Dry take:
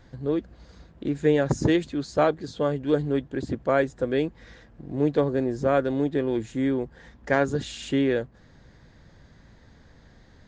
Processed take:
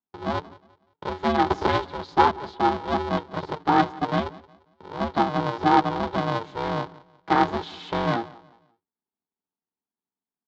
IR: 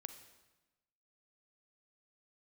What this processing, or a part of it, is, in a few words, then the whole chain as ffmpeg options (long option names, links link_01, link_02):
ring modulator pedal into a guitar cabinet: -filter_complex "[0:a]agate=range=-46dB:threshold=-40dB:ratio=16:detection=peak,asettb=1/sr,asplit=3[link_01][link_02][link_03];[link_01]atrim=end=4.894[link_04];[link_02]atrim=start=4.89:end=5.38,asetpts=PTS-STARTPTS,afade=type=in:duration=0.004:curve=qsin,afade=type=out:start_time=0.486:duration=0.004:curve=qsin,equalizer=frequency=140:width_type=o:width=0.98:gain=-8.5[link_05];[link_03]atrim=start=5.376[link_06];[link_04][link_05]acrossfade=duration=0.004:curve1=hsin:curve2=qsin[link_07];[link_07][link_06]acrossfade=duration=0.004:curve1=qsin:curve2=hsin,aecho=1:1:5.3:0.53,asplit=2[link_08][link_09];[link_09]adelay=180,lowpass=frequency=1900:poles=1,volume=-21dB,asplit=2[link_10][link_11];[link_11]adelay=180,lowpass=frequency=1900:poles=1,volume=0.35,asplit=2[link_12][link_13];[link_13]adelay=180,lowpass=frequency=1900:poles=1,volume=0.35[link_14];[link_08][link_10][link_12][link_14]amix=inputs=4:normalize=0,aeval=exprs='val(0)*sgn(sin(2*PI*230*n/s))':channel_layout=same,highpass=110,equalizer=frequency=120:width_type=q:width=4:gain=-10,equalizer=frequency=570:width_type=q:width=4:gain=-8,equalizer=frequency=910:width_type=q:width=4:gain=8,equalizer=frequency=1900:width_type=q:width=4:gain=-5,equalizer=frequency=2600:width_type=q:width=4:gain=-9,lowpass=frequency=4100:width=0.5412,lowpass=frequency=4100:width=1.3066,volume=1dB"